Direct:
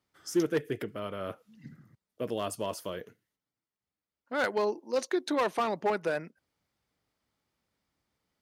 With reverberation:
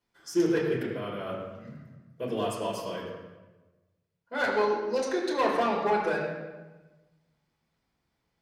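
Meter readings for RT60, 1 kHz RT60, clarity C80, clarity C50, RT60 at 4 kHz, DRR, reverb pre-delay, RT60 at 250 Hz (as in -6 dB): 1.2 s, 1.1 s, 4.0 dB, 2.5 dB, 0.85 s, -5.5 dB, 5 ms, 1.4 s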